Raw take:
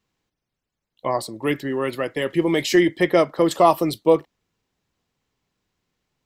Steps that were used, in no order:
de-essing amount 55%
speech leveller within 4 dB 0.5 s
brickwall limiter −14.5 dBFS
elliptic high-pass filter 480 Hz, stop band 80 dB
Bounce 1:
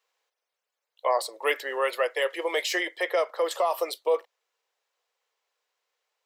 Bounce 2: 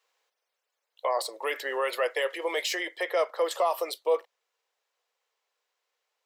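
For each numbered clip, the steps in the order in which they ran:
elliptic high-pass filter, then brickwall limiter, then speech leveller, then de-essing
speech leveller, then brickwall limiter, then de-essing, then elliptic high-pass filter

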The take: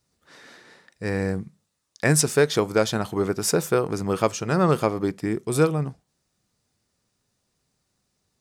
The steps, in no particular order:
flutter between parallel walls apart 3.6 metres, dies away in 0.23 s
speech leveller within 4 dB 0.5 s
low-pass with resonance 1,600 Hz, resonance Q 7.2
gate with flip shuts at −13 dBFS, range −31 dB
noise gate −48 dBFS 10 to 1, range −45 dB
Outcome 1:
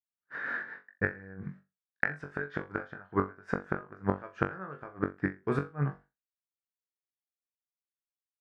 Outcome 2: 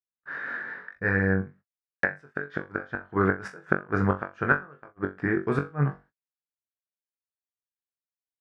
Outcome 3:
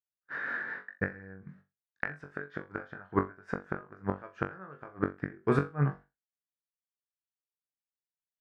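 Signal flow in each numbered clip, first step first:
noise gate, then low-pass with resonance, then gate with flip, then flutter between parallel walls, then speech leveller
gate with flip, then low-pass with resonance, then speech leveller, then flutter between parallel walls, then noise gate
speech leveller, then noise gate, then low-pass with resonance, then gate with flip, then flutter between parallel walls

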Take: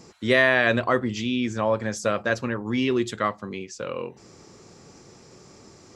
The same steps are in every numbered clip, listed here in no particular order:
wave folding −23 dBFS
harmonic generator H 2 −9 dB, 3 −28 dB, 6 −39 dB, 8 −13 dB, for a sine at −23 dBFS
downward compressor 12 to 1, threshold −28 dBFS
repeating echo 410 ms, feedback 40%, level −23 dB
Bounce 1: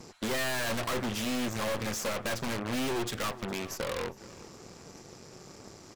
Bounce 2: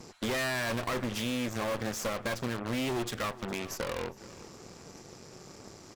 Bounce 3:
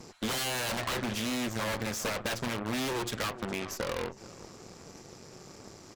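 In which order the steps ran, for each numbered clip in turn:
harmonic generator, then repeating echo, then wave folding, then downward compressor
harmonic generator, then repeating echo, then downward compressor, then wave folding
repeating echo, then wave folding, then harmonic generator, then downward compressor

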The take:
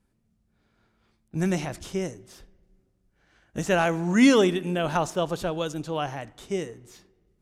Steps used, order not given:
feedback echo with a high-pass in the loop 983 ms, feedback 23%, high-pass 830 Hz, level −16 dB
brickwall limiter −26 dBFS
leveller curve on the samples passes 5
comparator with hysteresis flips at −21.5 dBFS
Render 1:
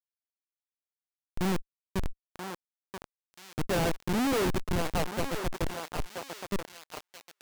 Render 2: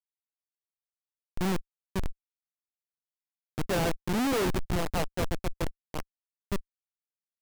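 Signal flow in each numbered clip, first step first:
comparator with hysteresis, then feedback echo with a high-pass in the loop, then brickwall limiter, then leveller curve on the samples
feedback echo with a high-pass in the loop, then comparator with hysteresis, then leveller curve on the samples, then brickwall limiter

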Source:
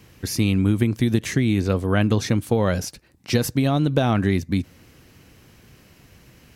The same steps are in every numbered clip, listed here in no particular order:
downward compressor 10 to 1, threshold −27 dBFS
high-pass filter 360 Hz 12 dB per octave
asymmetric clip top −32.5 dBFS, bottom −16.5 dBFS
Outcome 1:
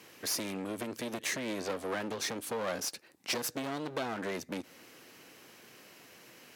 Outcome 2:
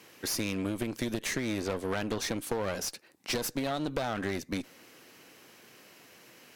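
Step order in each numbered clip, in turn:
asymmetric clip, then downward compressor, then high-pass filter
high-pass filter, then asymmetric clip, then downward compressor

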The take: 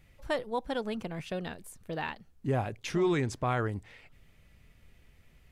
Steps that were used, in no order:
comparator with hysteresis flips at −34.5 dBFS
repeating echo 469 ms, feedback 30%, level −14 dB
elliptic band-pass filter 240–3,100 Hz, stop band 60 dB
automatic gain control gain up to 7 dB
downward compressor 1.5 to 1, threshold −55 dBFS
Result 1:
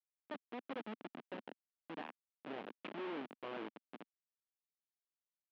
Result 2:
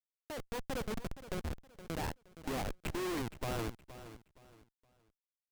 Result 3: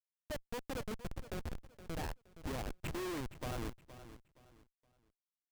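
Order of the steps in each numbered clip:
automatic gain control, then repeating echo, then downward compressor, then comparator with hysteresis, then elliptic band-pass filter
elliptic band-pass filter, then comparator with hysteresis, then downward compressor, then automatic gain control, then repeating echo
elliptic band-pass filter, then downward compressor, then automatic gain control, then comparator with hysteresis, then repeating echo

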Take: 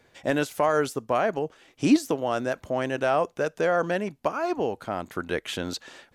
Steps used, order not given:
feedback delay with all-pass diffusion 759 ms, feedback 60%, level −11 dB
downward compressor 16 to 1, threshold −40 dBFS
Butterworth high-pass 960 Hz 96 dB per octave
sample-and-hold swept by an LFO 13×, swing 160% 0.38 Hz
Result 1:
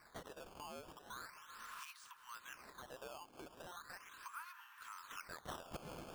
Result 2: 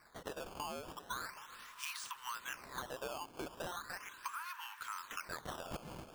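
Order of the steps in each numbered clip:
feedback delay with all-pass diffusion, then downward compressor, then Butterworth high-pass, then sample-and-hold swept by an LFO
Butterworth high-pass, then downward compressor, then feedback delay with all-pass diffusion, then sample-and-hold swept by an LFO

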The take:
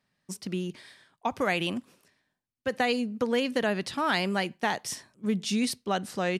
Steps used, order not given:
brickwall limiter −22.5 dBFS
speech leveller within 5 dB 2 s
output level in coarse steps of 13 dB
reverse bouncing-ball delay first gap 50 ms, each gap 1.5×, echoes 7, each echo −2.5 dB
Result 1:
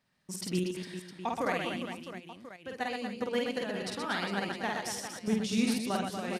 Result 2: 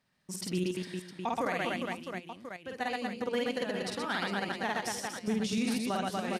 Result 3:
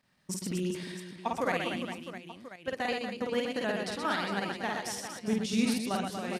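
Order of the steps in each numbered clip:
speech leveller, then output level in coarse steps, then brickwall limiter, then reverse bouncing-ball delay
speech leveller, then output level in coarse steps, then reverse bouncing-ball delay, then brickwall limiter
output level in coarse steps, then brickwall limiter, then speech leveller, then reverse bouncing-ball delay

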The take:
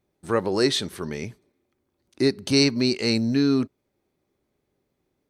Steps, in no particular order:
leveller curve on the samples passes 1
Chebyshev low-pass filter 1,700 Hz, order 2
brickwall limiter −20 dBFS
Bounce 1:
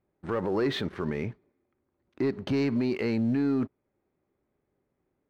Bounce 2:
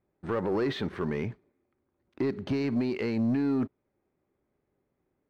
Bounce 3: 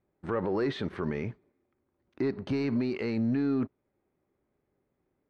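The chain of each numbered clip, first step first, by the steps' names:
Chebyshev low-pass filter, then leveller curve on the samples, then brickwall limiter
brickwall limiter, then Chebyshev low-pass filter, then leveller curve on the samples
leveller curve on the samples, then brickwall limiter, then Chebyshev low-pass filter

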